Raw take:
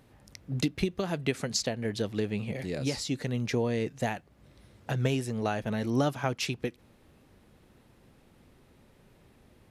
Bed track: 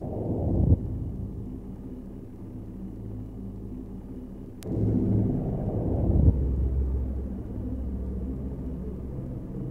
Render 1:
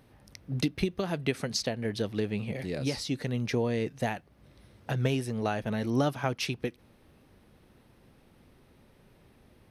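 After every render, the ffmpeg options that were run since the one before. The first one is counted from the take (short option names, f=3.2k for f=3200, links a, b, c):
-af "equalizer=f=7.2k:w=7.7:g=-12.5"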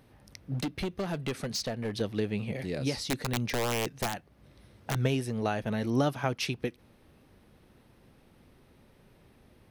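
-filter_complex "[0:a]asettb=1/sr,asplit=3[a][b][c];[a]atrim=end=0.544[d];[b]atrim=start=0.54:end=2.01,asetpts=PTS-STARTPTS,afade=t=in:d=0.004:c=qsin,afade=t=out:st=1.466:d=0.004:c=qsin,asoftclip=type=hard:threshold=-28dB[e];[c]atrim=start=2.006[f];[d][e]acrossfade=d=0.004:c1=hsin:c2=qsin[g];[g][f]acrossfade=d=0.004:c1=qsin:c2=hsin,asettb=1/sr,asplit=3[h][i][j];[h]atrim=end=2.944[k];[i]atrim=start=2.94:end=4.98,asetpts=PTS-STARTPTS,afade=t=in:d=0.004:c=qsin,afade=t=out:st=2.036:d=0.004:c=qsin,aeval=exprs='(mod(13.3*val(0)+1,2)-1)/13.3':c=same[l];[j]atrim=start=4.976[m];[k][l]acrossfade=d=0.004:c1=hsin:c2=qsin[n];[n][m]acrossfade=d=0.004:c1=qsin:c2=hsin"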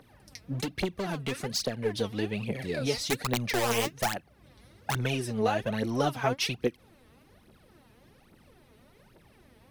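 -filter_complex "[0:a]acrossover=split=300[a][b];[a]volume=30dB,asoftclip=hard,volume=-30dB[c];[b]aphaser=in_gain=1:out_gain=1:delay=4.8:decay=0.74:speed=1.2:type=triangular[d];[c][d]amix=inputs=2:normalize=0"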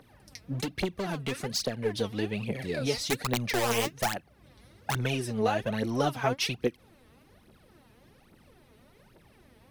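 -af anull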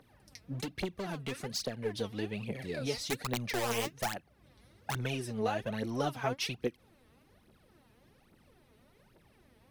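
-af "volume=-5.5dB"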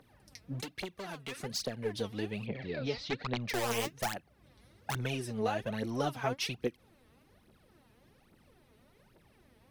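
-filter_complex "[0:a]asettb=1/sr,asplit=3[a][b][c];[a]atrim=end=0.634[d];[b]atrim=start=0.63:end=1.37,asetpts=PTS-STARTPTS,afade=t=in:d=0.004:c=qsin,afade=t=out:st=0.736:d=0.004:c=qsin,lowshelf=f=420:g=-9.5[e];[c]atrim=start=1.366[f];[d][e]acrossfade=d=0.004:c1=hsin:c2=qsin[g];[g][f]acrossfade=d=0.004:c1=qsin:c2=hsin,asettb=1/sr,asplit=3[h][i][j];[h]atrim=end=2.464[k];[i]atrim=start=2.46:end=3.48,asetpts=PTS-STARTPTS,afade=t=in:d=0.004:c=qsin,afade=t=out:st=1.016:d=0.004:c=qsin,lowpass=f=4.4k:w=0.5412,lowpass=f=4.4k:w=1.3066[l];[j]atrim=start=3.476[m];[k][l]acrossfade=d=0.004:c1=hsin:c2=qsin[n];[n][m]acrossfade=d=0.004:c1=qsin:c2=hsin"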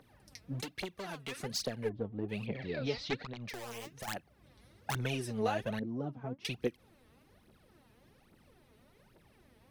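-filter_complex "[0:a]asplit=3[a][b][c];[a]afade=t=out:st=1.88:d=0.02[d];[b]adynamicsmooth=sensitivity=0.5:basefreq=560,afade=t=in:st=1.88:d=0.02,afade=t=out:st=2.28:d=0.02[e];[c]afade=t=in:st=2.28:d=0.02[f];[d][e][f]amix=inputs=3:normalize=0,asettb=1/sr,asplit=3[g][h][i];[g]atrim=end=3.214[j];[h]atrim=start=3.21:end=4.08,asetpts=PTS-STARTPTS,afade=t=in:d=0.004:c=qsin,afade=t=out:st=0.866:d=0.004:c=qsin,acompressor=threshold=-40dB:ratio=6:attack=3.2:release=140:knee=1:detection=peak[k];[i]atrim=start=4.076[l];[j][k]acrossfade=d=0.004:c1=hsin:c2=qsin[m];[m][l]acrossfade=d=0.004:c1=qsin:c2=hsin,asettb=1/sr,asplit=3[n][o][p];[n]atrim=end=5.794[q];[o]atrim=start=5.79:end=6.45,asetpts=PTS-STARTPTS,afade=t=in:d=0.004:c=qsin,afade=t=out:st=0.656:d=0.004:c=qsin,bandpass=f=200:t=q:w=1.1[r];[p]atrim=start=6.446[s];[q][r]acrossfade=d=0.004:c1=hsin:c2=qsin[t];[t][s]acrossfade=d=0.004:c1=qsin:c2=hsin"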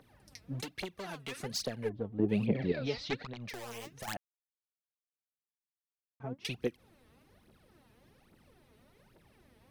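-filter_complex "[0:a]asettb=1/sr,asplit=3[a][b][c];[a]atrim=end=2.194[d];[b]atrim=start=2.19:end=2.72,asetpts=PTS-STARTPTS,afade=t=in:d=0.004:c=qsin,afade=t=out:st=0.526:d=0.004:c=qsin,equalizer=f=250:t=o:w=2.7:g=10.5[e];[c]atrim=start=2.716[f];[d][e]acrossfade=d=0.004:c1=hsin:c2=qsin[g];[g][f]acrossfade=d=0.004:c1=qsin:c2=hsin,asplit=3[h][i][j];[h]atrim=end=4.17,asetpts=PTS-STARTPTS,afade=t=out:st=4.166:d=0.004:c=hsin[k];[i]atrim=start=4.17:end=6.2,asetpts=PTS-STARTPTS,volume=0[l];[j]atrim=start=6.2,asetpts=PTS-STARTPTS,afade=t=in:d=0.004:c=hsin[m];[k][l][m]concat=n=3:v=0:a=1"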